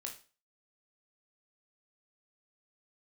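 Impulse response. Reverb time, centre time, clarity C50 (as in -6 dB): 0.35 s, 17 ms, 9.5 dB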